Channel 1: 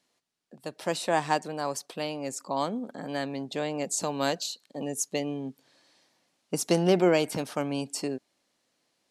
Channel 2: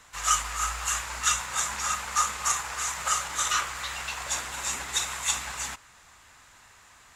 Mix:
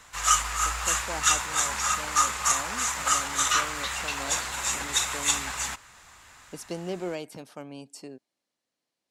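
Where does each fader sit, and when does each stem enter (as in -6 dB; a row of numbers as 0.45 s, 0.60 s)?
-11.0 dB, +2.5 dB; 0.00 s, 0.00 s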